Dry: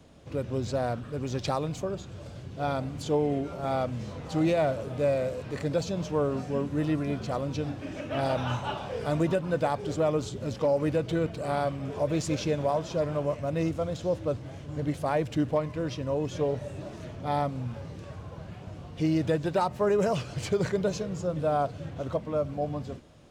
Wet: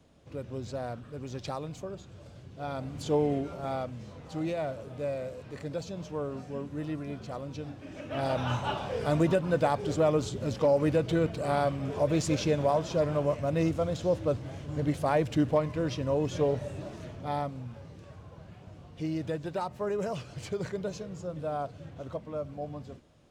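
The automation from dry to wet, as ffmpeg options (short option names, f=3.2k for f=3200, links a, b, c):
-af "volume=8.5dB,afade=t=in:st=2.69:d=0.51:silence=0.446684,afade=t=out:st=3.2:d=0.75:silence=0.421697,afade=t=in:st=7.85:d=0.83:silence=0.375837,afade=t=out:st=16.49:d=1.18:silence=0.398107"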